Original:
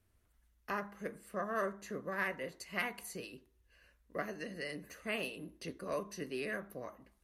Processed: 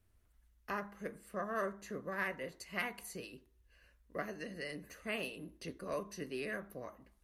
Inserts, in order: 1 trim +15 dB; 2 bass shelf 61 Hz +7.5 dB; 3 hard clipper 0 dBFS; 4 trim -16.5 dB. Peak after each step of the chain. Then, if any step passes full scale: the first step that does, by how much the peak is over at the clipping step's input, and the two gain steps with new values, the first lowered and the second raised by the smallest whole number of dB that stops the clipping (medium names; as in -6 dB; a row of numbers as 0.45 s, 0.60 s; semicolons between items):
-5.5 dBFS, -5.5 dBFS, -5.5 dBFS, -22.0 dBFS; nothing clips